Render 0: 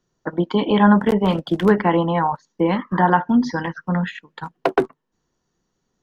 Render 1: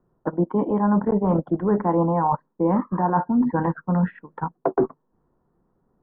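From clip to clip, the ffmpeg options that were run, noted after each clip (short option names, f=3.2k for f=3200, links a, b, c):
-af "areverse,acompressor=threshold=-24dB:ratio=6,areverse,lowpass=f=1.2k:w=0.5412,lowpass=f=1.2k:w=1.3066,volume=6.5dB"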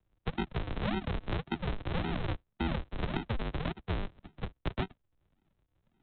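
-filter_complex "[0:a]aresample=8000,acrusher=samples=27:mix=1:aa=0.000001:lfo=1:lforange=27:lforate=1.8,aresample=44100,acrossover=split=86|280[a][b][c];[a]acompressor=threshold=-29dB:ratio=4[d];[b]acompressor=threshold=-32dB:ratio=4[e];[c]acompressor=threshold=-28dB:ratio=4[f];[d][e][f]amix=inputs=3:normalize=0,volume=-6dB"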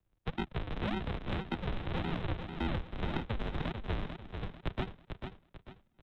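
-filter_complex "[0:a]aeval=exprs='if(lt(val(0),0),0.708*val(0),val(0))':c=same,asplit=2[a][b];[b]aecho=0:1:444|888|1332|1776:0.447|0.161|0.0579|0.0208[c];[a][c]amix=inputs=2:normalize=0,volume=-1dB"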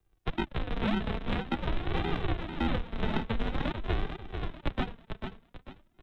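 -af "flanger=delay=2.5:depth=2.1:regen=38:speed=0.48:shape=sinusoidal,volume=8.5dB"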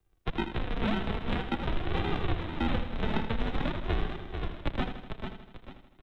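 -af "aecho=1:1:80|160|240|320|400|480|560:0.335|0.198|0.117|0.0688|0.0406|0.0239|0.0141"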